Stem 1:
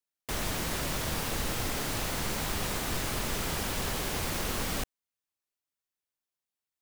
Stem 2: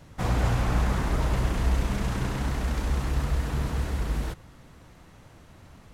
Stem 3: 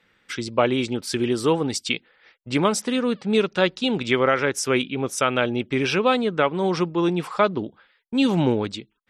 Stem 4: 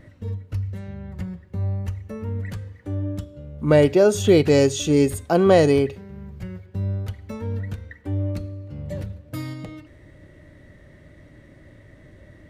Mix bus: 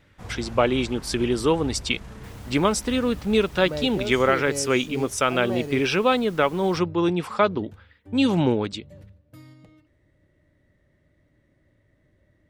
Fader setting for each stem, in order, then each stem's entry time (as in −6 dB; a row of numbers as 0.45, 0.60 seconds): −17.5, −13.5, −0.5, −16.0 decibels; 1.95, 0.00, 0.00, 0.00 seconds